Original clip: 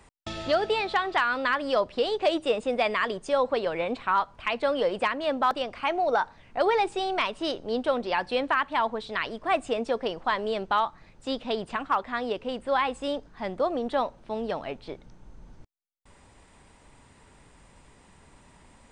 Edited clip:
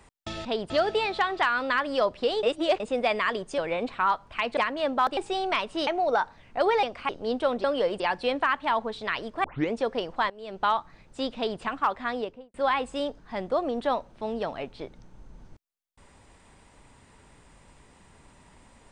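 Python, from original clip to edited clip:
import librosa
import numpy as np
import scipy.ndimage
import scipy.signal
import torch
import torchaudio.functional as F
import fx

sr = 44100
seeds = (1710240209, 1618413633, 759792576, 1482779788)

y = fx.studio_fade_out(x, sr, start_s=12.19, length_s=0.43)
y = fx.edit(y, sr, fx.reverse_span(start_s=2.18, length_s=0.37),
    fx.cut(start_s=3.33, length_s=0.33),
    fx.move(start_s=4.65, length_s=0.36, to_s=8.08),
    fx.swap(start_s=5.61, length_s=0.26, other_s=6.83, other_length_s=0.7),
    fx.tape_start(start_s=9.52, length_s=0.28),
    fx.fade_in_from(start_s=10.38, length_s=0.34, curve='qua', floor_db=-18.5),
    fx.duplicate(start_s=11.44, length_s=0.25, to_s=0.45), tone=tone)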